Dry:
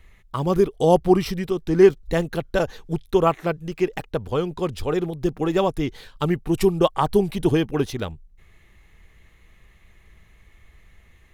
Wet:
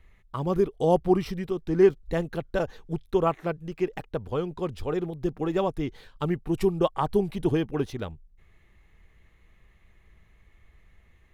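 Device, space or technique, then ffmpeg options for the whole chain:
behind a face mask: -af "highshelf=f=3.1k:g=-7,volume=-5dB"

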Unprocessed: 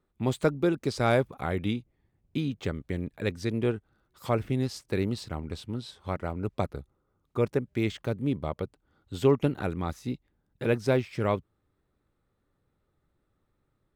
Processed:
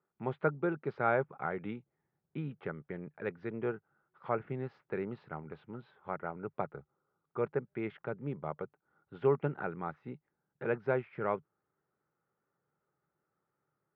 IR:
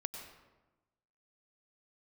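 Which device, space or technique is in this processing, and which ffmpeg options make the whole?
bass cabinet: -af "highpass=f=230:p=1,highpass=82,equalizer=f=89:t=q:w=4:g=-8,equalizer=f=150:t=q:w=4:g=7,equalizer=f=270:t=q:w=4:g=-6,equalizer=f=410:t=q:w=4:g=3,equalizer=f=840:t=q:w=4:g=5,equalizer=f=1.4k:t=q:w=4:g=7,lowpass=f=2.2k:w=0.5412,lowpass=f=2.2k:w=1.3066,volume=-6.5dB"

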